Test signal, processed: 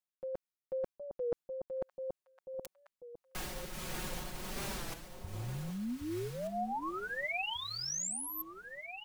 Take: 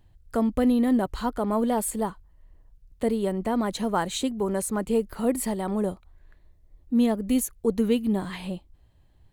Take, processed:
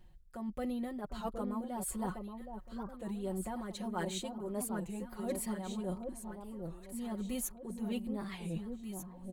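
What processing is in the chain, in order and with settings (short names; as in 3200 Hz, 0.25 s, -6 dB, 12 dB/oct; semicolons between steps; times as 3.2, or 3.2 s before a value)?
comb 5.5 ms, depth 88%; reverse; compressor 6:1, threshold -32 dBFS; reverse; tremolo 1.5 Hz, depth 45%; echo with dull and thin repeats by turns 0.771 s, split 1000 Hz, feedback 58%, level -5 dB; record warp 33 1/3 rpm, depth 160 cents; gain -3 dB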